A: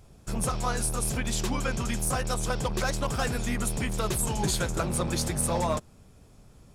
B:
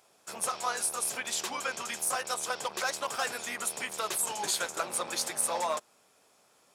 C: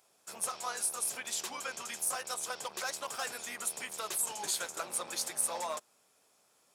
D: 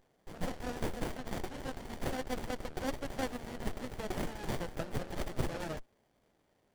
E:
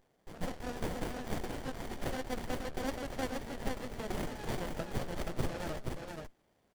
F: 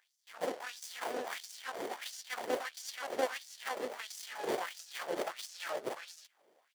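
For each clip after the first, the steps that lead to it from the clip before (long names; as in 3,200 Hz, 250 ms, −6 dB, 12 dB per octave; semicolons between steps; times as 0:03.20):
high-pass filter 650 Hz 12 dB per octave
high-shelf EQ 5,600 Hz +6 dB; level −6.5 dB
windowed peak hold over 33 samples; level +1.5 dB
single-tap delay 476 ms −4 dB; level −1 dB
auto-filter high-pass sine 1.5 Hz 390–6,000 Hz; level +1.5 dB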